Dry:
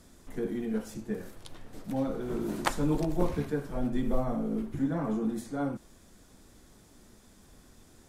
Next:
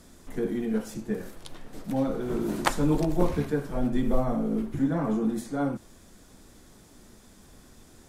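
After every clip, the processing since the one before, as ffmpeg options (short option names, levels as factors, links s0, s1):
-af "bandreject=f=50:t=h:w=6,bandreject=f=100:t=h:w=6,volume=1.58"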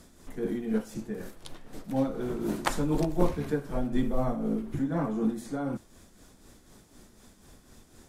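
-af "tremolo=f=4:d=0.52"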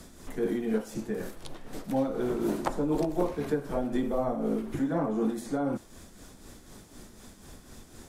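-filter_complex "[0:a]acrossover=split=280|950[s0][s1][s2];[s0]acompressor=threshold=0.00794:ratio=4[s3];[s1]acompressor=threshold=0.0282:ratio=4[s4];[s2]acompressor=threshold=0.00316:ratio=4[s5];[s3][s4][s5]amix=inputs=3:normalize=0,volume=1.88"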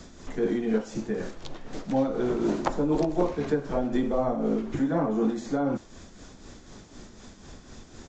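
-af "aresample=16000,aresample=44100,volume=1.41"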